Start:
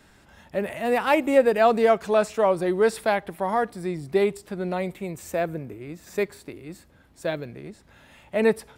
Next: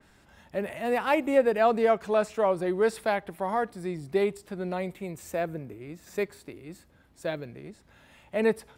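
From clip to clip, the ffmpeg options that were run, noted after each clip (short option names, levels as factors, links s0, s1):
-af "adynamicequalizer=threshold=0.0141:dfrequency=3200:dqfactor=0.7:tfrequency=3200:tqfactor=0.7:attack=5:release=100:ratio=0.375:range=2:mode=cutabove:tftype=highshelf,volume=0.631"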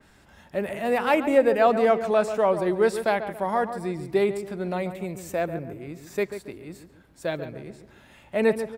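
-filter_complex "[0:a]asplit=2[s0][s1];[s1]adelay=139,lowpass=f=1800:p=1,volume=0.335,asplit=2[s2][s3];[s3]adelay=139,lowpass=f=1800:p=1,volume=0.41,asplit=2[s4][s5];[s5]adelay=139,lowpass=f=1800:p=1,volume=0.41,asplit=2[s6][s7];[s7]adelay=139,lowpass=f=1800:p=1,volume=0.41[s8];[s0][s2][s4][s6][s8]amix=inputs=5:normalize=0,volume=1.41"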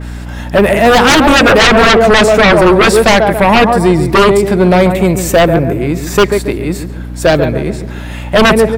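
-af "aeval=exprs='0.422*sin(PI/2*5.62*val(0)/0.422)':c=same,aeval=exprs='val(0)+0.0501*(sin(2*PI*60*n/s)+sin(2*PI*2*60*n/s)/2+sin(2*PI*3*60*n/s)/3+sin(2*PI*4*60*n/s)/4+sin(2*PI*5*60*n/s)/5)':c=same,volume=1.68"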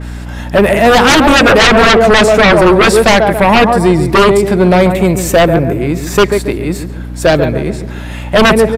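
-af "aresample=32000,aresample=44100"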